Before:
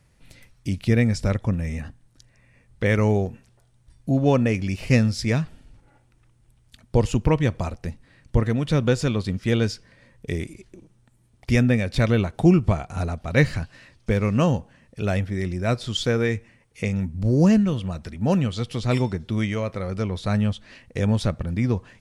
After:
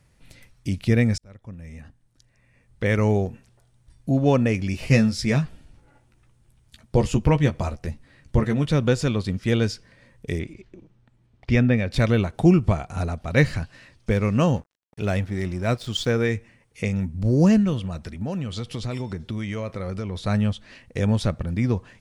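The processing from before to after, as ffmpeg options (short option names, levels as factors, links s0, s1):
-filter_complex "[0:a]asettb=1/sr,asplit=3[s0][s1][s2];[s0]atrim=end=4.724[s3];[s1]atrim=start=4.72:end=8.66,asetpts=PTS-STARTPTS,afade=t=in:d=0.004:c=qsin,afade=t=out:st=3.936:d=0.004:c=qsin,asplit=2[s4][s5];[s5]adelay=14,volume=0.473[s6];[s4][s6]amix=inputs=2:normalize=0,atrim=end_sample=173754[s7];[s2]atrim=start=8.656[s8];[s3][s7]acrossfade=d=0.004:c1=hsin:c2=qsin[s9];[s9][s8]acrossfade=d=0.004:c1=qsin:c2=hsin,asettb=1/sr,asplit=3[s10][s11][s12];[s10]atrim=end=10.394[s13];[s11]atrim=start=10.39:end=11.91,asetpts=PTS-STARTPTS,afade=t=in:d=0.004:c=qsin,afade=t=out:st=1.516:d=0.004:c=qsin,lowpass=3900[s14];[s12]atrim=start=11.906[s15];[s13][s14]acrossfade=d=0.004:c1=hsin:c2=qsin[s16];[s16][s15]acrossfade=d=0.004:c1=qsin:c2=hsin,asettb=1/sr,asplit=3[s17][s18][s19];[s17]atrim=end=14.564[s20];[s18]atrim=start=14.56:end=16.11,asetpts=PTS-STARTPTS,afade=t=in:d=0.004:c=qsin,afade=t=out:st=1.546:d=0.004:c=qsin,aeval=exprs='sgn(val(0))*max(abs(val(0))-0.00531,0)':c=same[s21];[s19]atrim=start=16.106[s22];[s20][s21]acrossfade=d=0.004:c1=hsin:c2=qsin[s23];[s23][s22]acrossfade=d=0.004:c1=qsin:c2=hsin,asettb=1/sr,asplit=3[s24][s25][s26];[s24]atrim=end=17.854[s27];[s25]atrim=start=17.85:end=20.16,asetpts=PTS-STARTPTS,afade=t=in:d=0.004:c=qsin,afade=t=out:st=2.306:d=0.004:c=qsin,acompressor=threshold=0.0631:ratio=6:attack=3.2:release=140:knee=1:detection=peak[s28];[s26]atrim=start=20.156[s29];[s27][s28]acrossfade=d=0.004:c1=hsin:c2=qsin[s30];[s30][s29]acrossfade=d=0.004:c1=qsin:c2=hsin,asplit=2[s31][s32];[s31]atrim=end=1.18,asetpts=PTS-STARTPTS,afade=t=out:st=1.176:d=0.004:c=hsin[s33];[s32]atrim=start=1.18,asetpts=PTS-STARTPTS,afade=t=in:d=1.97[s34];[s33][s34]concat=n=2:v=0:a=1"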